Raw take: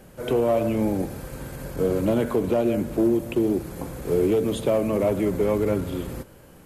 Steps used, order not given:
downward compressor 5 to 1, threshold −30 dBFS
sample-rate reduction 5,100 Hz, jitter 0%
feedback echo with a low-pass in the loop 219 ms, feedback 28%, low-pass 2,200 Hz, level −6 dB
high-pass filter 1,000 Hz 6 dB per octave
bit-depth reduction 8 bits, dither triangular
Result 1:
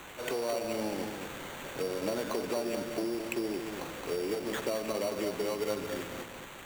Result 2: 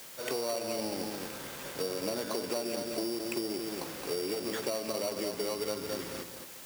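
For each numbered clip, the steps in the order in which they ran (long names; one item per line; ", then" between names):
high-pass filter, then bit-depth reduction, then downward compressor, then feedback echo with a low-pass in the loop, then sample-rate reduction
feedback echo with a low-pass in the loop, then sample-rate reduction, then bit-depth reduction, then high-pass filter, then downward compressor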